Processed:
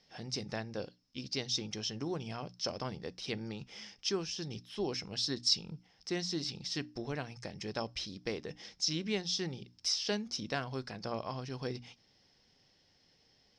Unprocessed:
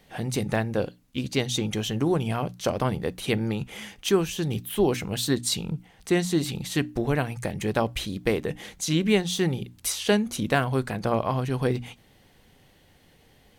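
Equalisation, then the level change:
transistor ladder low-pass 5,400 Hz, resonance 90%
low-shelf EQ 72 Hz −8 dB
0.0 dB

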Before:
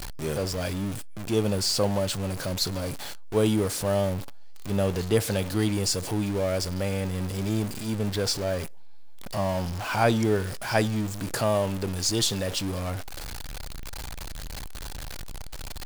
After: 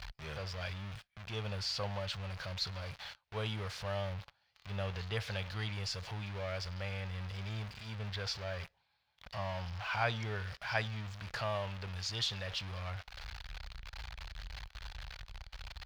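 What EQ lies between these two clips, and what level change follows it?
high-pass filter 43 Hz
high-frequency loss of the air 270 metres
guitar amp tone stack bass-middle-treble 10-0-10
+2.0 dB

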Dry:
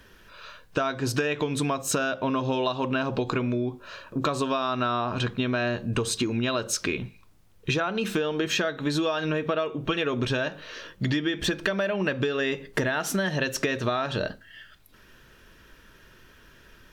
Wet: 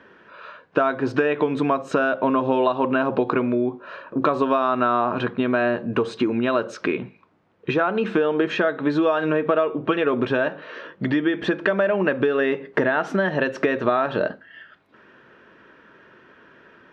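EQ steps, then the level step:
high-pass filter 230 Hz 12 dB per octave
low-pass filter 1,700 Hz 12 dB per octave
+7.5 dB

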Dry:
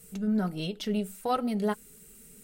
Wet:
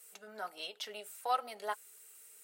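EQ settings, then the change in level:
four-pole ladder high-pass 560 Hz, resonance 20%
+2.0 dB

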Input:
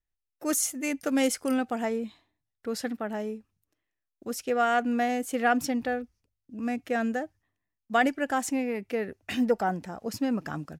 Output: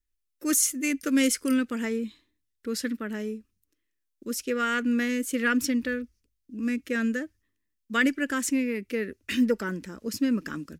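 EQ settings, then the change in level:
dynamic equaliser 1,800 Hz, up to +4 dB, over −42 dBFS, Q 0.92
bass and treble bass +5 dB, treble +3 dB
phaser with its sweep stopped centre 310 Hz, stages 4
+1.5 dB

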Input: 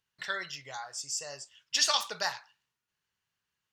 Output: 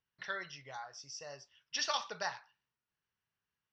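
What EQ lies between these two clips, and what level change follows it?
low-pass with resonance 5,800 Hz, resonance Q 12
high-frequency loss of the air 430 metres
−2.5 dB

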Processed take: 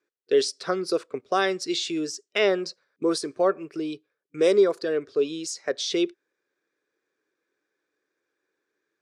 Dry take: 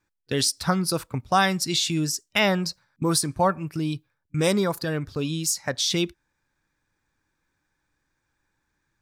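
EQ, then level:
high-pass with resonance 410 Hz, resonance Q 4.9
Bessel low-pass filter 5,900 Hz, order 4
parametric band 880 Hz −13.5 dB 0.27 octaves
−3.5 dB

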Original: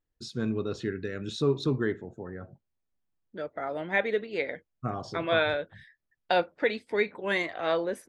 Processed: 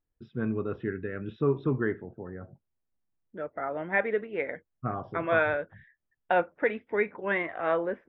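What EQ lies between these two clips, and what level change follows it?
dynamic equaliser 1,400 Hz, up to +5 dB, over −42 dBFS, Q 0.92
Savitzky-Golay smoothing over 25 samples
high-frequency loss of the air 380 metres
0.0 dB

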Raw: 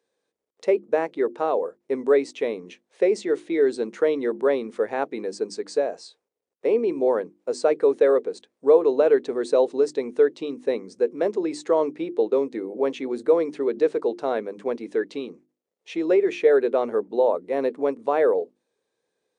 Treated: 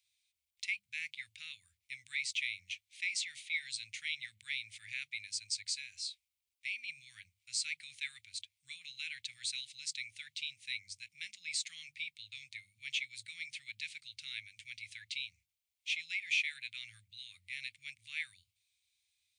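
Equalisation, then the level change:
Chebyshev band-stop filter 110–2,200 Hz, order 5
parametric band 120 Hz −10.5 dB 0.31 octaves
parametric band 5,900 Hz −2.5 dB 0.77 octaves
+6.0 dB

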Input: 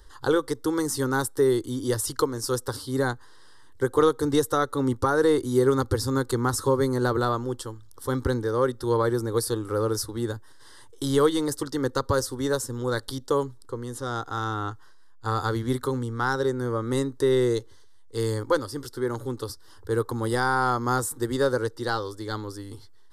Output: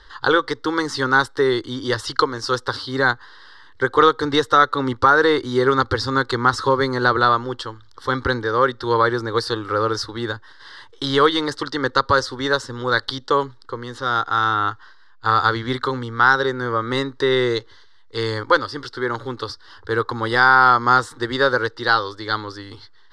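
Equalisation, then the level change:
low-pass with resonance 4,300 Hz, resonance Q 2.2
parametric band 1,600 Hz +13 dB 2.2 octaves
0.0 dB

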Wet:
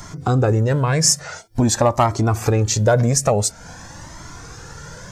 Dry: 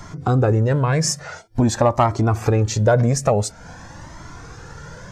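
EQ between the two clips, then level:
high-shelf EQ 4,900 Hz +11 dB
0.0 dB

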